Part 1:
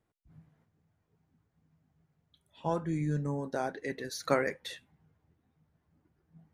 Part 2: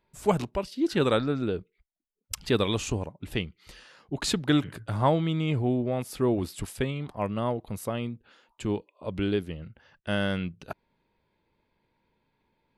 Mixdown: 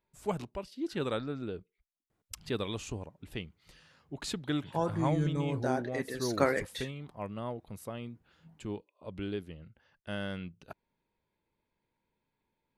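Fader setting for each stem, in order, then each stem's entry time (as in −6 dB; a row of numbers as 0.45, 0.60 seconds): +0.5, −9.5 decibels; 2.10, 0.00 seconds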